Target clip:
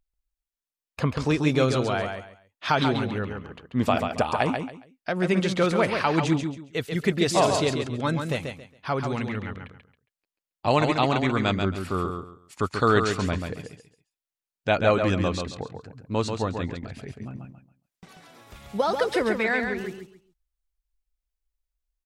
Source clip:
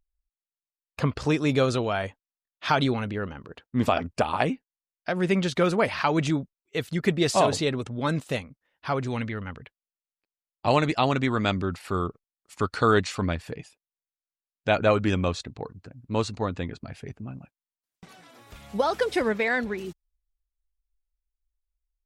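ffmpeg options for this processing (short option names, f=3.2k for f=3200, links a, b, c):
-af "aecho=1:1:137|274|411:0.501|0.125|0.0313"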